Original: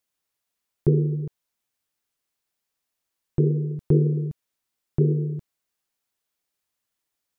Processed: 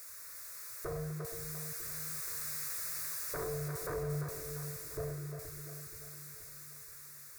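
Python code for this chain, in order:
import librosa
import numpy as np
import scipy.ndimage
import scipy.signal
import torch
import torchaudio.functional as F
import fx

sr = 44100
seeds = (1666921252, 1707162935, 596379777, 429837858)

p1 = x + 0.5 * 10.0 ** (-34.5 / 20.0) * np.sign(x)
p2 = fx.doppler_pass(p1, sr, speed_mps=9, closest_m=9.6, pass_at_s=2.7)
p3 = scipy.signal.sosfilt(scipy.signal.butter(2, 69.0, 'highpass', fs=sr, output='sos'), p2)
p4 = fx.peak_eq(p3, sr, hz=330.0, db=-11.0, octaves=2.1)
p5 = 10.0 ** (-32.5 / 20.0) * (np.abs((p4 / 10.0 ** (-32.5 / 20.0) + 3.0) % 4.0 - 2.0) - 1.0)
p6 = fx.fixed_phaser(p5, sr, hz=830.0, stages=6)
p7 = p6 + fx.echo_split(p6, sr, split_hz=370.0, low_ms=476, high_ms=346, feedback_pct=52, wet_db=-6.5, dry=0)
y = F.gain(torch.from_numpy(p7), 2.5).numpy()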